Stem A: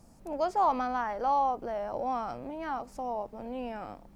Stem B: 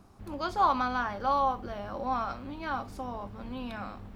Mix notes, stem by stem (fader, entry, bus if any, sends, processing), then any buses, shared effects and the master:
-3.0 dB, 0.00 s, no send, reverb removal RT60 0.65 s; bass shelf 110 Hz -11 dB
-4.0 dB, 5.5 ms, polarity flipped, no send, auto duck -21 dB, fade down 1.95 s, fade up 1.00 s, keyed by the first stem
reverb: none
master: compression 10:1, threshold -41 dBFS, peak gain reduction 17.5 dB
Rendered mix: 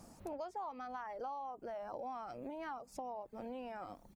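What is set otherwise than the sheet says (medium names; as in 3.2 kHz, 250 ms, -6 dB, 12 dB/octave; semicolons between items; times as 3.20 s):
stem A -3.0 dB -> +3.5 dB; stem B -4.0 dB -> -10.0 dB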